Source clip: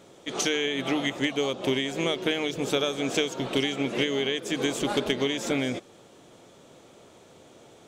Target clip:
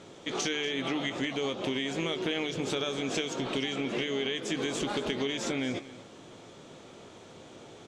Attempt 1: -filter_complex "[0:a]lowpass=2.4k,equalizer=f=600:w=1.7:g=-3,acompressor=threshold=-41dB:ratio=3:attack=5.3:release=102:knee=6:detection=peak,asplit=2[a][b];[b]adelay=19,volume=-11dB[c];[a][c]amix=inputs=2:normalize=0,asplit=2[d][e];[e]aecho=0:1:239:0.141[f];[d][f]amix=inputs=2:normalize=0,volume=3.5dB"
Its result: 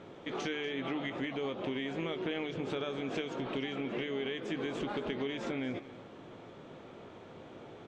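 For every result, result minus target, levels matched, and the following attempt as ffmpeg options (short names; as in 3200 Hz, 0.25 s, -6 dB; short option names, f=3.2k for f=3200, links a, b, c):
8000 Hz band -13.0 dB; compressor: peak gain reduction +3.5 dB
-filter_complex "[0:a]lowpass=6.8k,equalizer=f=600:w=1.7:g=-3,acompressor=threshold=-41dB:ratio=3:attack=5.3:release=102:knee=6:detection=peak,asplit=2[a][b];[b]adelay=19,volume=-11dB[c];[a][c]amix=inputs=2:normalize=0,asplit=2[d][e];[e]aecho=0:1:239:0.141[f];[d][f]amix=inputs=2:normalize=0,volume=3.5dB"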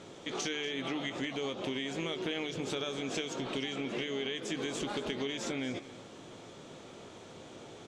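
compressor: peak gain reduction +4.5 dB
-filter_complex "[0:a]lowpass=6.8k,equalizer=f=600:w=1.7:g=-3,acompressor=threshold=-34.5dB:ratio=3:attack=5.3:release=102:knee=6:detection=peak,asplit=2[a][b];[b]adelay=19,volume=-11dB[c];[a][c]amix=inputs=2:normalize=0,asplit=2[d][e];[e]aecho=0:1:239:0.141[f];[d][f]amix=inputs=2:normalize=0,volume=3.5dB"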